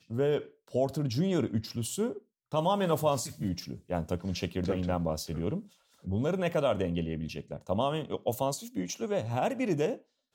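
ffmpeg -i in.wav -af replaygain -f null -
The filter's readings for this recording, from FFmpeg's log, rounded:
track_gain = +11.3 dB
track_peak = 0.134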